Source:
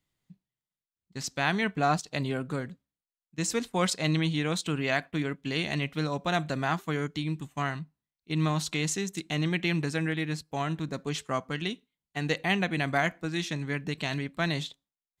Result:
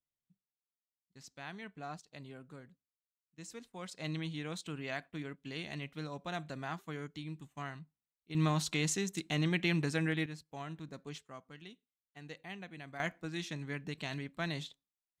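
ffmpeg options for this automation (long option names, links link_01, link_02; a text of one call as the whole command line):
ffmpeg -i in.wav -af "asetnsamples=nb_out_samples=441:pad=0,asendcmd='3.97 volume volume -12dB;8.35 volume volume -3.5dB;10.26 volume volume -13dB;11.18 volume volume -19.5dB;13 volume volume -8.5dB',volume=-19dB" out.wav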